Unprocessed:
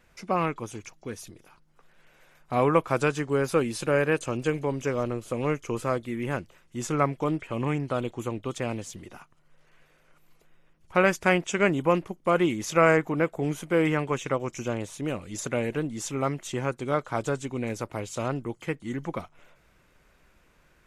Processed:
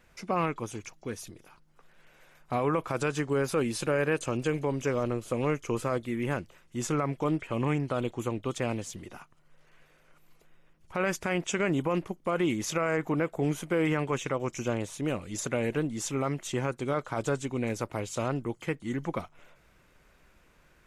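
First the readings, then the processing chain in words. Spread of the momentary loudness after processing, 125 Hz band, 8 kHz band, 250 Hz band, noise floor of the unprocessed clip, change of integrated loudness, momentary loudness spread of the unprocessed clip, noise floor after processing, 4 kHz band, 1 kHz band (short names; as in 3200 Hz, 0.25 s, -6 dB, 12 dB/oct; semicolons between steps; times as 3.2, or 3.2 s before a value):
8 LU, -1.5 dB, 0.0 dB, -2.0 dB, -63 dBFS, -3.5 dB, 11 LU, -63 dBFS, -1.5 dB, -4.5 dB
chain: limiter -18.5 dBFS, peak gain reduction 11 dB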